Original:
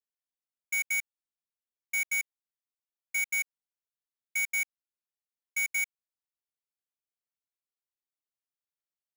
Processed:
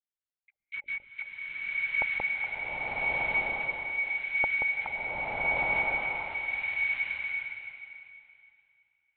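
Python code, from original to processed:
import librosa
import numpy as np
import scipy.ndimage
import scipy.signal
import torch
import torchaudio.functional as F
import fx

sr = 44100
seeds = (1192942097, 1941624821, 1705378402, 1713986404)

y = fx.local_reverse(x, sr, ms=242.0)
y = fx.peak_eq(y, sr, hz=2200.0, db=3.5, octaves=0.36)
y = fx.dispersion(y, sr, late='lows', ms=141.0, hz=540.0)
y = fx.lpc_vocoder(y, sr, seeds[0], excitation='whisper', order=10)
y = fx.rev_bloom(y, sr, seeds[1], attack_ms=1290, drr_db=-10.0)
y = y * 10.0 ** (-7.0 / 20.0)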